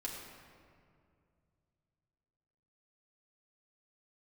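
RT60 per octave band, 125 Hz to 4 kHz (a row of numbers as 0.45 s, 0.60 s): 3.7 s, 2.8 s, 2.5 s, 2.1 s, 1.8 s, 1.3 s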